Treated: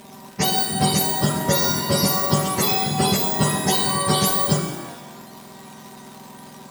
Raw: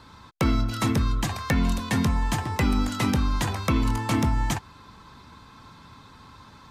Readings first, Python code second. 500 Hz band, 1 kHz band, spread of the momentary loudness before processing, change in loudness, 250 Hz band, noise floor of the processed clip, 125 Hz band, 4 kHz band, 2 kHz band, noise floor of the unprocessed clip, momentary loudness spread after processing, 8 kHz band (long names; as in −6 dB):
+10.0 dB, +7.5 dB, 3 LU, +6.0 dB, +2.0 dB, −42 dBFS, +1.0 dB, +12.0 dB, +3.0 dB, −50 dBFS, 6 LU, +14.5 dB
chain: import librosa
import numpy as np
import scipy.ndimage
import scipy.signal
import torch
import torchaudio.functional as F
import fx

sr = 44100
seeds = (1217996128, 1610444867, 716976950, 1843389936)

y = fx.octave_mirror(x, sr, pivot_hz=1000.0)
y = y + 0.74 * np.pad(y, (int(5.1 * sr / 1000.0), 0))[:len(y)]
y = fx.dmg_crackle(y, sr, seeds[0], per_s=290.0, level_db=-38.0)
y = fx.rev_shimmer(y, sr, seeds[1], rt60_s=1.1, semitones=12, shimmer_db=-8, drr_db=4.5)
y = F.gain(torch.from_numpy(y), 4.5).numpy()